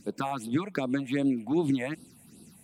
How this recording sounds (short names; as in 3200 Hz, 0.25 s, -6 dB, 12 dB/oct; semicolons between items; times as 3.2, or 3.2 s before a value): phasing stages 6, 2.6 Hz, lowest notch 320–2000 Hz; AAC